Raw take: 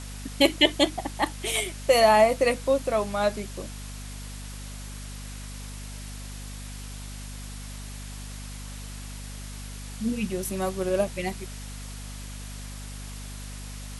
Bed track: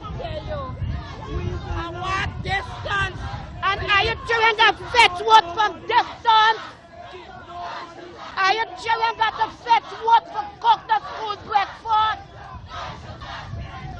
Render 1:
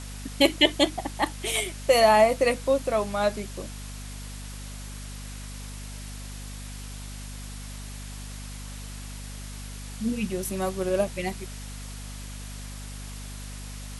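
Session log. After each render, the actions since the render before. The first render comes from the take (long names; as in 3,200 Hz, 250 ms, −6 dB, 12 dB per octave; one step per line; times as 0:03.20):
no processing that can be heard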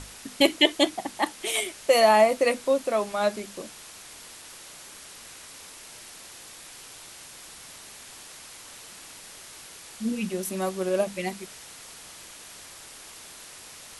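mains-hum notches 50/100/150/200/250 Hz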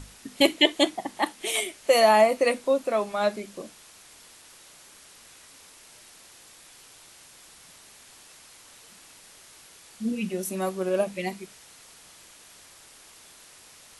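noise reduction from a noise print 6 dB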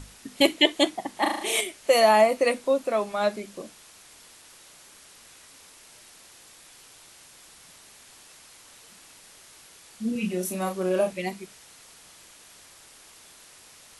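0:01.17–0:01.61: flutter between parallel walls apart 6.4 metres, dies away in 0.7 s
0:10.12–0:11.13: double-tracking delay 33 ms −5 dB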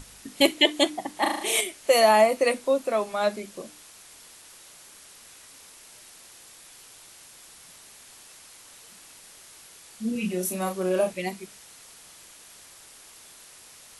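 high-shelf EQ 8,300 Hz +5 dB
mains-hum notches 50/100/150/200/250/300 Hz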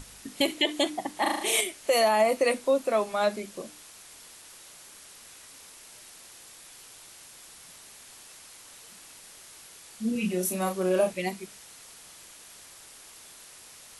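brickwall limiter −14 dBFS, peak gain reduction 8.5 dB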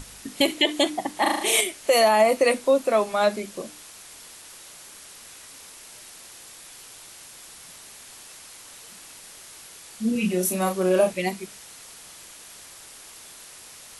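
level +4.5 dB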